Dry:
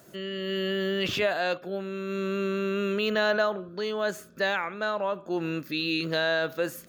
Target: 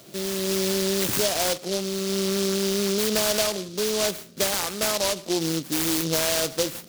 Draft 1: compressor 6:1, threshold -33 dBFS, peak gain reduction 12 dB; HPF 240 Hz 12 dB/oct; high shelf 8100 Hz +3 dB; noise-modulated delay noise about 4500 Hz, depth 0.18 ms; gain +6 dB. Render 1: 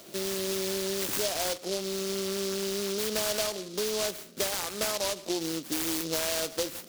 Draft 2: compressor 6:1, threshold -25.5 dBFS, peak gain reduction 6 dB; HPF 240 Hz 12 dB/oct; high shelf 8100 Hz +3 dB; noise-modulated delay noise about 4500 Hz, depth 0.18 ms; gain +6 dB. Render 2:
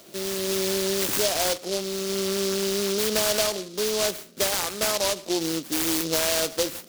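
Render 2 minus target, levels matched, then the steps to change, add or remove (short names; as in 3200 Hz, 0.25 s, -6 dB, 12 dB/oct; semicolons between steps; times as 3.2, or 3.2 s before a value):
125 Hz band -4.5 dB
change: HPF 86 Hz 12 dB/oct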